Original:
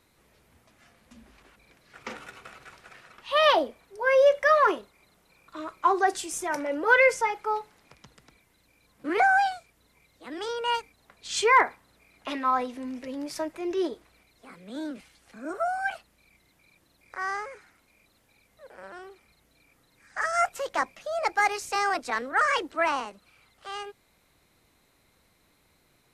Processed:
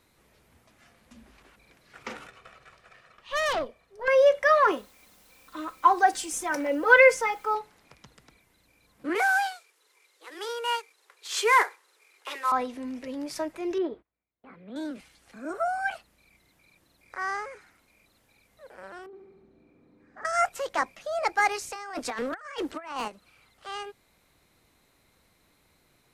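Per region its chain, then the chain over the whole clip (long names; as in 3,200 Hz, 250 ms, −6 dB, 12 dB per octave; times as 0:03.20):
0:02.27–0:04.08: high-shelf EQ 7,600 Hz −8.5 dB + comb filter 1.7 ms, depth 37% + tube saturation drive 24 dB, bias 0.8
0:04.71–0:07.55: comb filter 3.9 ms, depth 58% + bit-depth reduction 10 bits, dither triangular
0:09.15–0:12.52: variable-slope delta modulation 64 kbit/s + Butterworth high-pass 370 Hz 48 dB per octave + parametric band 660 Hz −11.5 dB 0.41 octaves
0:13.78–0:14.76: noise gate −55 dBFS, range −26 dB + high-pass filter 42 Hz + high-frequency loss of the air 460 metres
0:19.06–0:20.25: mu-law and A-law mismatch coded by mu + resonant band-pass 240 Hz, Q 1.2 + flutter between parallel walls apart 11.9 metres, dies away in 1.2 s
0:21.72–0:23.08: notch filter 4,000 Hz, Q 30 + compressor whose output falls as the input rises −32 dBFS, ratio −0.5 + gain into a clipping stage and back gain 26 dB
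whole clip: no processing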